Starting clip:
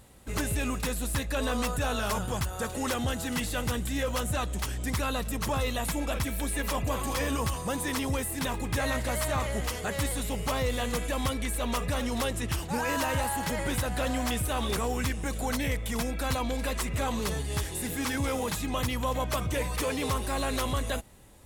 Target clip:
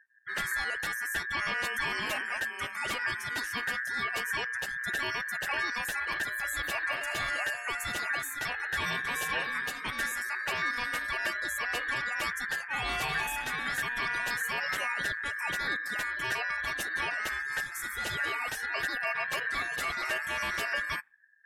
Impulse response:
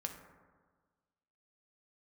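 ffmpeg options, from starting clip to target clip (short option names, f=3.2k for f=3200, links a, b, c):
-af "afftdn=nr=35:nf=-41,aeval=exprs='val(0)*sin(2*PI*1700*n/s)':c=same"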